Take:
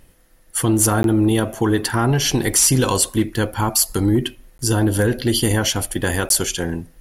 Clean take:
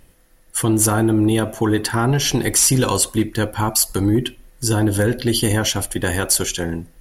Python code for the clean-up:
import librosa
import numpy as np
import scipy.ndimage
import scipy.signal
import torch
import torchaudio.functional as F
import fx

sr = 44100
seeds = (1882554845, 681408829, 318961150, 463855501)

y = fx.fix_interpolate(x, sr, at_s=(1.03, 4.58, 6.29), length_ms=12.0)